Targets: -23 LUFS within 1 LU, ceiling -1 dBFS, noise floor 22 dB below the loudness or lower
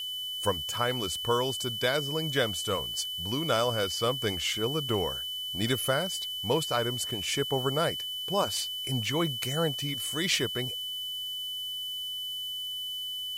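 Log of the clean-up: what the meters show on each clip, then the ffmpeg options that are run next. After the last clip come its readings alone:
steady tone 3 kHz; tone level -33 dBFS; noise floor -36 dBFS; noise floor target -52 dBFS; loudness -29.5 LUFS; peak level -13.0 dBFS; loudness target -23.0 LUFS
-> -af "bandreject=f=3000:w=30"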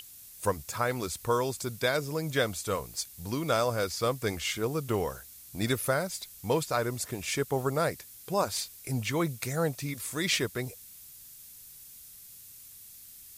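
steady tone not found; noise floor -50 dBFS; noise floor target -53 dBFS
-> -af "afftdn=nr=6:nf=-50"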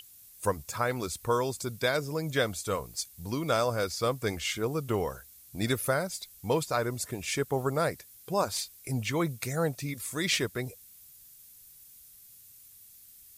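noise floor -54 dBFS; loudness -31.0 LUFS; peak level -13.0 dBFS; loudness target -23.0 LUFS
-> -af "volume=2.51"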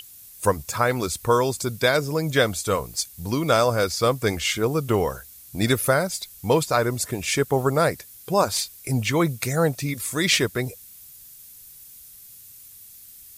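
loudness -23.0 LUFS; peak level -5.0 dBFS; noise floor -46 dBFS

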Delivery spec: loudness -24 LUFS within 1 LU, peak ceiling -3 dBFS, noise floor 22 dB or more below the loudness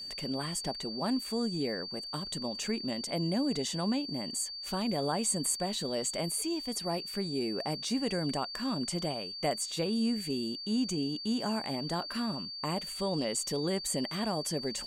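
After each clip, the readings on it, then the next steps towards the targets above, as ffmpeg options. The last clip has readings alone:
steady tone 4.6 kHz; tone level -39 dBFS; loudness -32.5 LUFS; peak level -18.5 dBFS; loudness target -24.0 LUFS
-> -af "bandreject=f=4600:w=30"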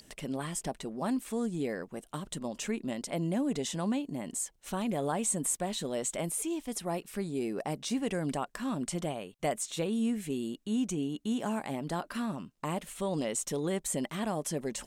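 steady tone not found; loudness -34.0 LUFS; peak level -19.0 dBFS; loudness target -24.0 LUFS
-> -af "volume=3.16"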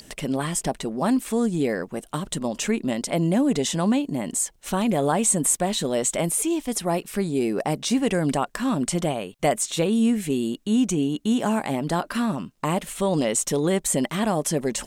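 loudness -24.0 LUFS; peak level -9.0 dBFS; noise floor -54 dBFS

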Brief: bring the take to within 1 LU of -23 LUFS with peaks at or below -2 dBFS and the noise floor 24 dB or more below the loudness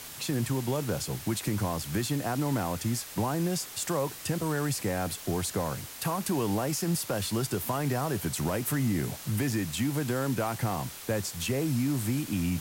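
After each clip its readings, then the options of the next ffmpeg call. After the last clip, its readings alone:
noise floor -44 dBFS; noise floor target -55 dBFS; loudness -30.5 LUFS; peak level -18.5 dBFS; loudness target -23.0 LUFS
-> -af "afftdn=nr=11:nf=-44"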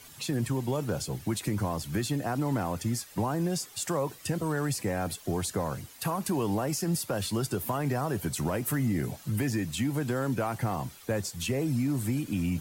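noise floor -51 dBFS; noise floor target -55 dBFS
-> -af "afftdn=nr=6:nf=-51"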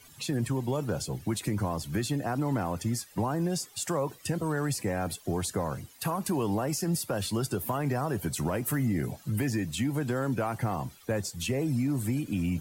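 noise floor -55 dBFS; loudness -31.0 LUFS; peak level -19.0 dBFS; loudness target -23.0 LUFS
-> -af "volume=2.51"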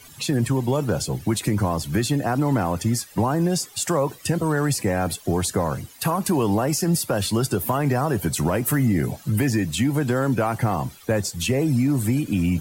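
loudness -23.0 LUFS; peak level -11.0 dBFS; noise floor -47 dBFS

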